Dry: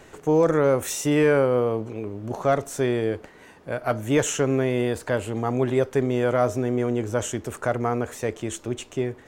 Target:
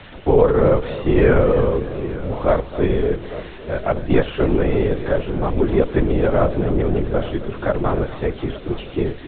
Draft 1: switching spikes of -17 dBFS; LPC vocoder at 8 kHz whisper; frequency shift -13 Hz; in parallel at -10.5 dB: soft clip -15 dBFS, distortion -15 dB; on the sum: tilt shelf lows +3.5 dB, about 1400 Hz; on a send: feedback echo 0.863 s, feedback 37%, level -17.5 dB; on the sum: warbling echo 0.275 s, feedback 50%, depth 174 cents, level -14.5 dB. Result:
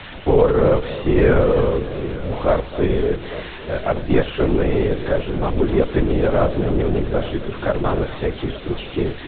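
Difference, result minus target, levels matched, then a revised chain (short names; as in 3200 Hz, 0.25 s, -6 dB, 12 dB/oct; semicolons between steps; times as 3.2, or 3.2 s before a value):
soft clip: distortion +14 dB; switching spikes: distortion +7 dB
switching spikes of -24 dBFS; LPC vocoder at 8 kHz whisper; frequency shift -13 Hz; in parallel at -10.5 dB: soft clip -5.5 dBFS, distortion -30 dB; on the sum: tilt shelf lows +3.5 dB, about 1400 Hz; on a send: feedback echo 0.863 s, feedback 37%, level -17.5 dB; on the sum: warbling echo 0.275 s, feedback 50%, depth 174 cents, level -14.5 dB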